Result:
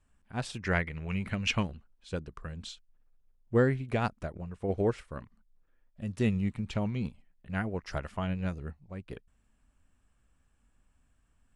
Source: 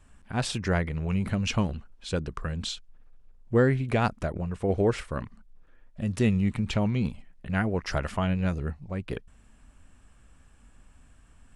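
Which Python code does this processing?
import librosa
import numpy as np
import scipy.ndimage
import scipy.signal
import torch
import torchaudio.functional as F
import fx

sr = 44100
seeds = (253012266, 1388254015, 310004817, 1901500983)

y = fx.peak_eq(x, sr, hz=2200.0, db=9.0, octaves=1.3, at=(0.63, 1.63))
y = fx.upward_expand(y, sr, threshold_db=-40.0, expansion=1.5)
y = y * 10.0 ** (-2.5 / 20.0)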